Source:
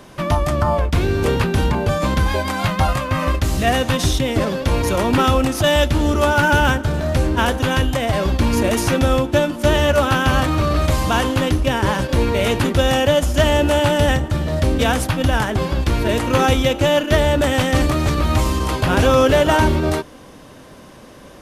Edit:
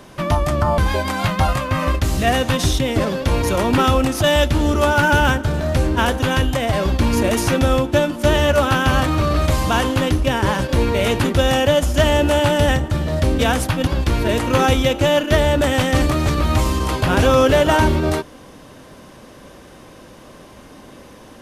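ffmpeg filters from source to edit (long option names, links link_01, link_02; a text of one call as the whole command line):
ffmpeg -i in.wav -filter_complex "[0:a]asplit=3[link_01][link_02][link_03];[link_01]atrim=end=0.782[link_04];[link_02]atrim=start=2.178:end=15.272[link_05];[link_03]atrim=start=15.668[link_06];[link_04][link_05]acrossfade=duration=0.004:curve1=hsin:curve2=hsin[link_07];[link_07][link_06]acrossfade=duration=0.004:curve1=hsin:curve2=hsin" out.wav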